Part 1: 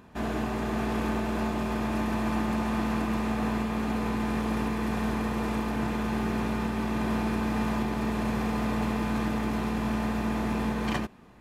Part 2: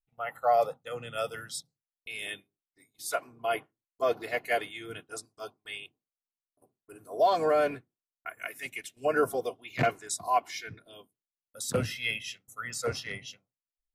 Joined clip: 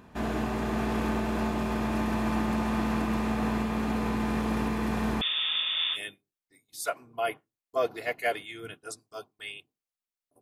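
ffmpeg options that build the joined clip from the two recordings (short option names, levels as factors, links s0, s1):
-filter_complex "[0:a]asettb=1/sr,asplit=3[s0][s1][s2];[s0]atrim=end=5.214[s3];[s1]atrim=start=5.21:end=5.99,asetpts=PTS-STARTPTS,afade=t=in:d=0.004:c=qsin,afade=t=out:st=0.776:d=0.004:c=qsin,lowpass=f=3100:t=q:w=0.5098,lowpass=f=3100:t=q:w=0.6013,lowpass=f=3100:t=q:w=0.9,lowpass=f=3100:t=q:w=2.563,afreqshift=-3700[s4];[s2]atrim=start=5.986[s5];[s3][s4]acrossfade=d=0.004:c1=hsin:c2=qsin[s6];[s6][s5]acrossfade=d=0.004:c1=qsin:c2=hsin,apad=whole_dur=10.41,atrim=end=10.41,atrim=end=5.99,asetpts=PTS-STARTPTS[s7];[1:a]atrim=start=2.19:end=6.67,asetpts=PTS-STARTPTS[s8];[s7][s8]acrossfade=d=0.06:c1=tri:c2=tri"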